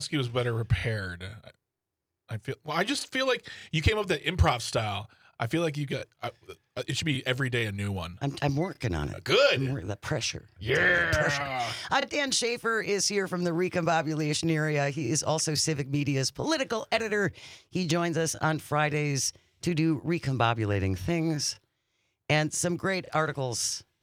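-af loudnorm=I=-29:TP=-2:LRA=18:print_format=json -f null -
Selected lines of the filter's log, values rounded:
"input_i" : "-28.2",
"input_tp" : "-10.1",
"input_lra" : "4.5",
"input_thresh" : "-38.5",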